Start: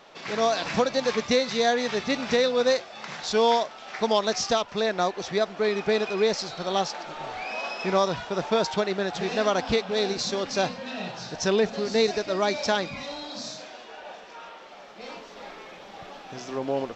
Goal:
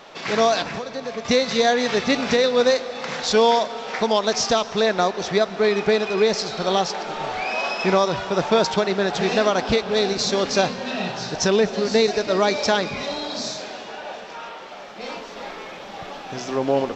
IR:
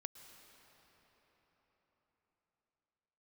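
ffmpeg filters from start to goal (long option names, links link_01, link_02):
-filter_complex "[0:a]alimiter=limit=-15dB:level=0:latency=1:release=431,asettb=1/sr,asplit=3[link_01][link_02][link_03];[link_01]atrim=end=0.624[link_04];[link_02]atrim=start=0.62:end=1.25,asetpts=PTS-STARTPTS,afade=type=in:duration=0.004:curve=qsin,afade=type=out:start_time=0.626:duration=0.004:curve=qsin,acrossover=split=360|2300[link_05][link_06][link_07];[link_05]acompressor=threshold=-43dB:ratio=4[link_08];[link_06]acompressor=threshold=-40dB:ratio=4[link_09];[link_07]acompressor=threshold=-51dB:ratio=4[link_10];[link_08][link_09][link_10]amix=inputs=3:normalize=0[link_11];[link_03]atrim=start=1.246[link_12];[link_04][link_11]acrossfade=duration=0.004:curve1=hsin:curve2=qsin[link_13];[link_13][link_12]acrossfade=duration=0.004:curve1=qsin:curve2=hsin,asplit=2[link_14][link_15];[1:a]atrim=start_sample=2205[link_16];[link_15][link_16]afir=irnorm=-1:irlink=0,volume=3.5dB[link_17];[link_14][link_17]amix=inputs=2:normalize=0,volume=2dB"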